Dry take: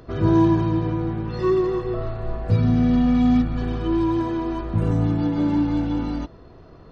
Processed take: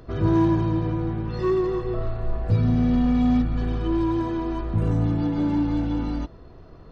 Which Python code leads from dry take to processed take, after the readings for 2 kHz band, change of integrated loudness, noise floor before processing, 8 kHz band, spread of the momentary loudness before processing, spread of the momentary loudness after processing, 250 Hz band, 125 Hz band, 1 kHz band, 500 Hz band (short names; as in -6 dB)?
-2.5 dB, -2.0 dB, -45 dBFS, n/a, 10 LU, 9 LU, -2.5 dB, -1.0 dB, -2.5 dB, -2.5 dB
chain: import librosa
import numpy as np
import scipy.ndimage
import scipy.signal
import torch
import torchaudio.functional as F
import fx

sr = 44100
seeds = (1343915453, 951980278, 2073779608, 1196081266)

p1 = fx.low_shelf(x, sr, hz=67.0, db=7.0)
p2 = np.clip(10.0 ** (19.0 / 20.0) * p1, -1.0, 1.0) / 10.0 ** (19.0 / 20.0)
p3 = p1 + (p2 * 10.0 ** (-8.0 / 20.0))
y = p3 * 10.0 ** (-5.0 / 20.0)